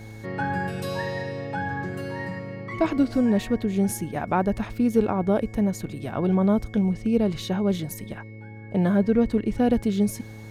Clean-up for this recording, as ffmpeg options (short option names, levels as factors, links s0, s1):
-af "bandreject=f=108.8:t=h:w=4,bandreject=f=217.6:t=h:w=4,bandreject=f=326.4:t=h:w=4,bandreject=f=435.2:t=h:w=4,bandreject=f=544:t=h:w=4,bandreject=f=2200:w=30"